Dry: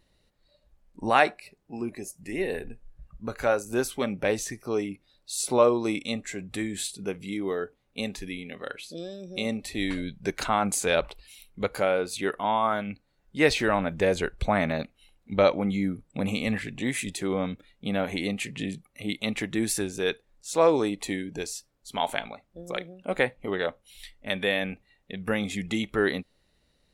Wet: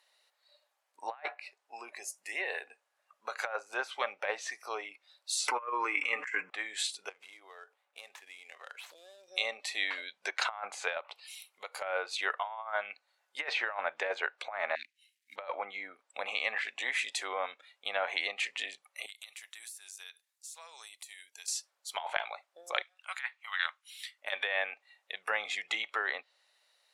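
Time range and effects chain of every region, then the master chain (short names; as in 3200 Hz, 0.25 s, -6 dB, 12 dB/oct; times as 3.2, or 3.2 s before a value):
5.48–6.5 fixed phaser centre 1600 Hz, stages 4 + comb 6.6 ms, depth 50% + fast leveller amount 100%
7.09–9.28 median filter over 9 samples + compressor 4:1, threshold -44 dBFS
10.97–11.82 bell 1600 Hz -7 dB 0.2 oct + compressor 2:1, threshold -42 dBFS + mismatched tape noise reduction encoder only
14.75–15.36 G.711 law mismatch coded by A + elliptic band-stop 290–1900 Hz
19.06–21.48 pre-emphasis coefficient 0.97 + compressor 16:1, threshold -45 dBFS
22.82–24.18 HPF 1200 Hz 24 dB/oct + high shelf 12000 Hz -6 dB
whole clip: treble ducked by the level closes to 2200 Hz, closed at -22.5 dBFS; HPF 710 Hz 24 dB/oct; negative-ratio compressor -32 dBFS, ratio -0.5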